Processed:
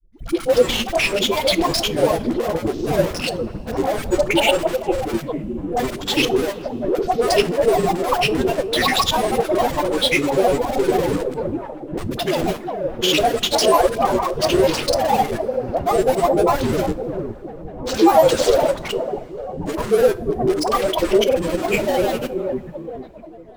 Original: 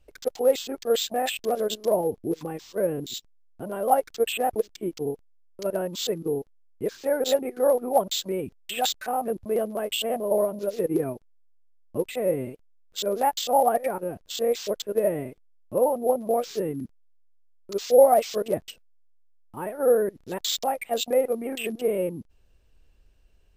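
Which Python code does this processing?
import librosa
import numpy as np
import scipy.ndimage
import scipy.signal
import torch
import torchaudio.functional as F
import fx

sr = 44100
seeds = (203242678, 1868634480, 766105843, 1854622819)

p1 = fx.spec_quant(x, sr, step_db=15)
p2 = fx.dynamic_eq(p1, sr, hz=2900.0, q=0.86, threshold_db=-43.0, ratio=4.0, max_db=6)
p3 = fx.schmitt(p2, sr, flips_db=-30.5)
p4 = p2 + F.gain(torch.from_numpy(p3), -3.0).numpy()
p5 = fx.dispersion(p4, sr, late='highs', ms=122.0, hz=460.0)
p6 = p5 + fx.echo_wet_lowpass(p5, sr, ms=444, feedback_pct=39, hz=1000.0, wet_db=-5.5, dry=0)
p7 = fx.granulator(p6, sr, seeds[0], grain_ms=100.0, per_s=20.0, spray_ms=100.0, spread_st=7)
p8 = fx.rev_double_slope(p7, sr, seeds[1], early_s=0.31, late_s=3.2, knee_db=-18, drr_db=14.0)
y = F.gain(torch.from_numpy(p8), 4.5).numpy()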